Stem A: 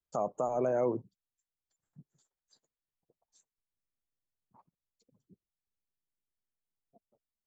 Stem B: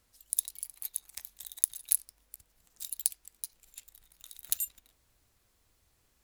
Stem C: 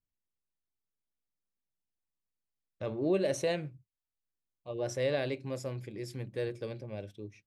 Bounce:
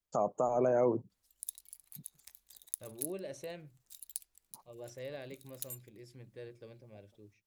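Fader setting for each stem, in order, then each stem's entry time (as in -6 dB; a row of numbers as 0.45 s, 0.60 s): +1.0 dB, -12.0 dB, -13.0 dB; 0.00 s, 1.10 s, 0.00 s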